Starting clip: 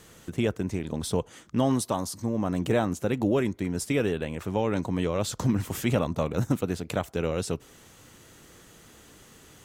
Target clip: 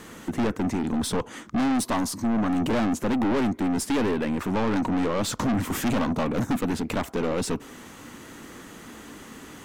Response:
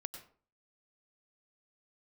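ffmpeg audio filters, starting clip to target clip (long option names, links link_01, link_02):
-af "equalizer=frequency=125:width_type=o:width=1:gain=-3,equalizer=frequency=250:width_type=o:width=1:gain=12,equalizer=frequency=1000:width_type=o:width=1:gain=7,equalizer=frequency=2000:width_type=o:width=1:gain=5,aeval=exprs='(tanh(20*val(0)+0.2)-tanh(0.2))/20':channel_layout=same,volume=4.5dB"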